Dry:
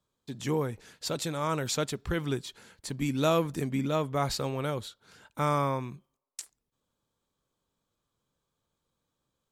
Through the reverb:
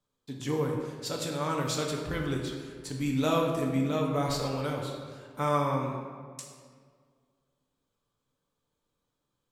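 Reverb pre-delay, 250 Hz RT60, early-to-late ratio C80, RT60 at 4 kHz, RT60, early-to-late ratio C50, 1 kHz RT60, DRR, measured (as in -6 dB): 4 ms, 2.2 s, 4.5 dB, 1.1 s, 1.9 s, 3.0 dB, 1.8 s, -1.0 dB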